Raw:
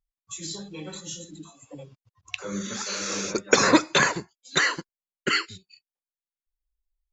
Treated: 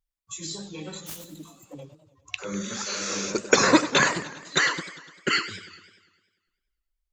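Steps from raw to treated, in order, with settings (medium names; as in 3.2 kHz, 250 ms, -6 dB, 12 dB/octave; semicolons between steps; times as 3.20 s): 1.06–1.81 s: self-modulated delay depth 0.22 ms; modulated delay 100 ms, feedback 60%, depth 191 cents, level -14 dB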